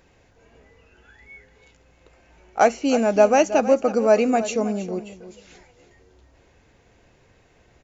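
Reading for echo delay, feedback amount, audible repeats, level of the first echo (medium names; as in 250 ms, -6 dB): 320 ms, 20%, 2, -14.0 dB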